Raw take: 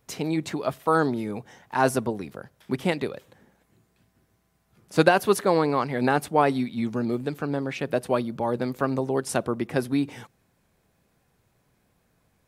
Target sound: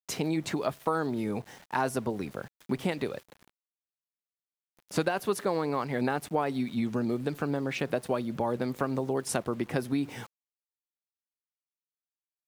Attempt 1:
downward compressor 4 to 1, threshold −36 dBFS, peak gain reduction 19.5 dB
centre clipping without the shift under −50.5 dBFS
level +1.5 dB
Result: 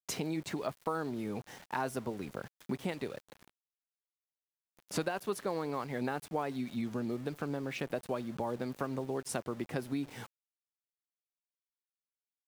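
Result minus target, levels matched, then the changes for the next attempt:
downward compressor: peak gain reduction +6.5 dB
change: downward compressor 4 to 1, threshold −27.5 dBFS, peak gain reduction 13.5 dB

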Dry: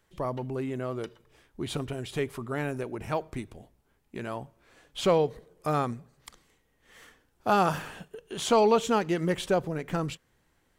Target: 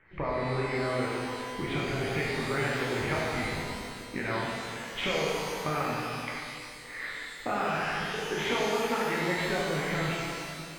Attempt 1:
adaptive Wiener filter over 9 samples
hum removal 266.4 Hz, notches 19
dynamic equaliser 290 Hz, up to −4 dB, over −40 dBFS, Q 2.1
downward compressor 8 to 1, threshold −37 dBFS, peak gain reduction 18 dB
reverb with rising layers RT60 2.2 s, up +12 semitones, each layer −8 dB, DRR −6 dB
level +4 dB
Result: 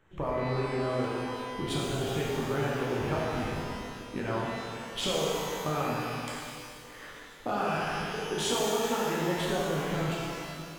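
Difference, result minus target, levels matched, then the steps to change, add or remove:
2,000 Hz band −5.0 dB
add after dynamic equaliser: low-pass with resonance 2,100 Hz, resonance Q 5.9

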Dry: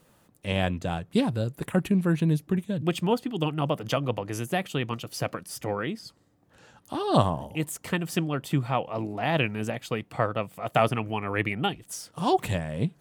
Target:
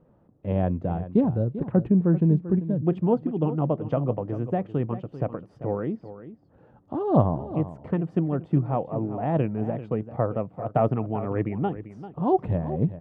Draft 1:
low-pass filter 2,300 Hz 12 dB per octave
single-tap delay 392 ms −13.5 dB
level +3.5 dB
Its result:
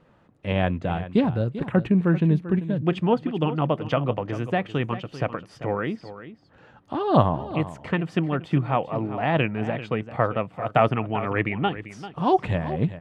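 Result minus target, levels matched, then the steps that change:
2,000 Hz band +14.5 dB
change: low-pass filter 680 Hz 12 dB per octave

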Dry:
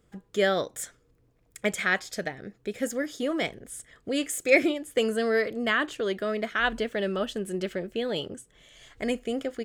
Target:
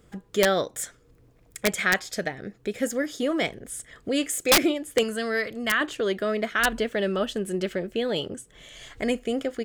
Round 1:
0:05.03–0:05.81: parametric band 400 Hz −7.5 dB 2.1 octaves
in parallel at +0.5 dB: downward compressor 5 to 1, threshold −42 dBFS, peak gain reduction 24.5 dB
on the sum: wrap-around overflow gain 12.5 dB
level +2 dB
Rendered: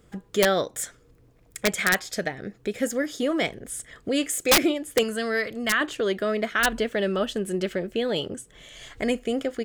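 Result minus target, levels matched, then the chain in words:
downward compressor: peak gain reduction −5.5 dB
0:05.03–0:05.81: parametric band 400 Hz −7.5 dB 2.1 octaves
in parallel at +0.5 dB: downward compressor 5 to 1, threshold −49 dBFS, peak gain reduction 30 dB
on the sum: wrap-around overflow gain 12.5 dB
level +2 dB

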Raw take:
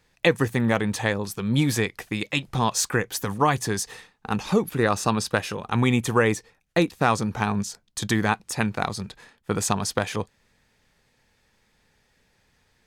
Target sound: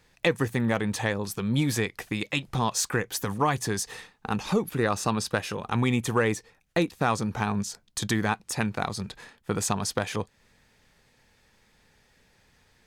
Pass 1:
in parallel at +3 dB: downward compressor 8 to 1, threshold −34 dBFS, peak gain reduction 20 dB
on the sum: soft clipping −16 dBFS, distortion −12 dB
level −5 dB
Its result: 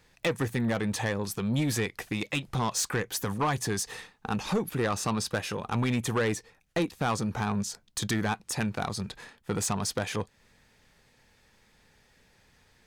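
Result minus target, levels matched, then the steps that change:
soft clipping: distortion +16 dB
change: soft clipping −4 dBFS, distortion −28 dB

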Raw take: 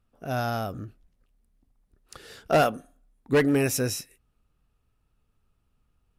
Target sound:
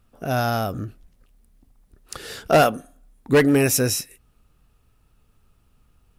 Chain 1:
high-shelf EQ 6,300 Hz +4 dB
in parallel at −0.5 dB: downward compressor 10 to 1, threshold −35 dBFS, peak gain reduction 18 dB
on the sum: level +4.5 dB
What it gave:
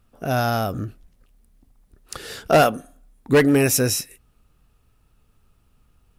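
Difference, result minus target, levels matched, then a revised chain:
downward compressor: peak gain reduction −5.5 dB
high-shelf EQ 6,300 Hz +4 dB
in parallel at −0.5 dB: downward compressor 10 to 1, threshold −41 dBFS, peak gain reduction 23.5 dB
on the sum: level +4.5 dB

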